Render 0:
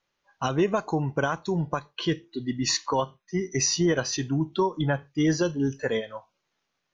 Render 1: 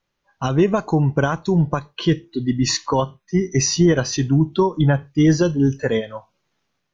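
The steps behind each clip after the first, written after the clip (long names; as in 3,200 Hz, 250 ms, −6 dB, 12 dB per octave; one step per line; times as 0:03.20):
low-shelf EQ 270 Hz +9.5 dB
automatic gain control gain up to 4 dB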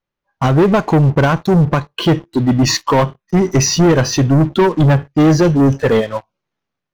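high-shelf EQ 3,300 Hz −8.5 dB
leveller curve on the samples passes 3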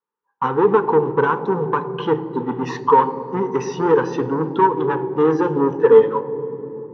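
pair of resonant band-passes 640 Hz, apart 1 octave
convolution reverb RT60 3.4 s, pre-delay 3 ms, DRR 12.5 dB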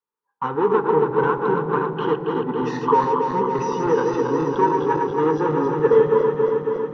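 feedback delay that plays each chunk backwards 138 ms, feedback 84%, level −5 dB
level −4.5 dB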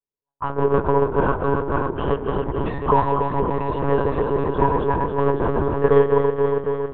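low-pass that shuts in the quiet parts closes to 470 Hz, open at −16.5 dBFS
one-pitch LPC vocoder at 8 kHz 140 Hz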